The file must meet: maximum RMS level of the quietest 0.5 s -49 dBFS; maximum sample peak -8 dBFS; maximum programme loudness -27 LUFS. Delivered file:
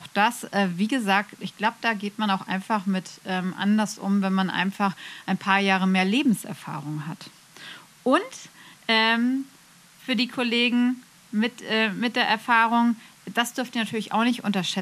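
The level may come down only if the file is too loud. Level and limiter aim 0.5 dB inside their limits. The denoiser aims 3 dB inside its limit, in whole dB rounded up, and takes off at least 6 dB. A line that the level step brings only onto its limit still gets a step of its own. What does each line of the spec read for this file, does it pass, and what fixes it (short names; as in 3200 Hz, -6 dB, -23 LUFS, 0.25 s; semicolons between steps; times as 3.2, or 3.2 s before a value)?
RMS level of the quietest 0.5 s -53 dBFS: OK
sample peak -6.0 dBFS: fail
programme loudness -24.0 LUFS: fail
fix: gain -3.5 dB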